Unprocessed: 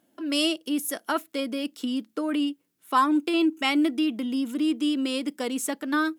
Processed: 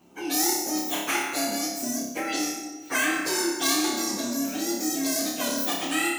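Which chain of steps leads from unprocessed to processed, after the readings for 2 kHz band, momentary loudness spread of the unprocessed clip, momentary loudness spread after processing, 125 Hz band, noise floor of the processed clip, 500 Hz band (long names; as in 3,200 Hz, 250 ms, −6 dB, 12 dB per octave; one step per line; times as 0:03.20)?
+3.5 dB, 8 LU, 6 LU, can't be measured, −40 dBFS, 0.0 dB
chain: partials spread apart or drawn together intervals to 129%
on a send: flutter between parallel walls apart 5 metres, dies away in 0.48 s
on the sum: dense smooth reverb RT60 1.2 s, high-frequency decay 0.8×, DRR 7.5 dB
every bin compressed towards the loudest bin 2 to 1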